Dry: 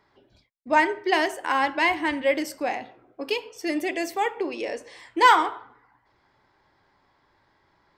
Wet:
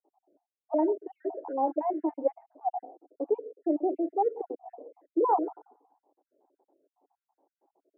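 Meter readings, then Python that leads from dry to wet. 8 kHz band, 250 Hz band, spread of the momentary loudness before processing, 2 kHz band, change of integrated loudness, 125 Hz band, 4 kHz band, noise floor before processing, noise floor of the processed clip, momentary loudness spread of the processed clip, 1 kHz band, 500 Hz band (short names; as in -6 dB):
under -35 dB, -1.5 dB, 15 LU, under -35 dB, -6.5 dB, n/a, under -40 dB, -66 dBFS, under -85 dBFS, 13 LU, -8.0 dB, -2.0 dB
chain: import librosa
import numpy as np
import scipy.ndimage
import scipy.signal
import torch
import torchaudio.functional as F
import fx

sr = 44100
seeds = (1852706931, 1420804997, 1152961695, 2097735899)

y = fx.spec_dropout(x, sr, seeds[0], share_pct=53)
y = scipy.signal.sosfilt(scipy.signal.ellip(3, 1.0, 80, [290.0, 770.0], 'bandpass', fs=sr, output='sos'), y)
y = F.gain(torch.from_numpy(y), 2.5).numpy()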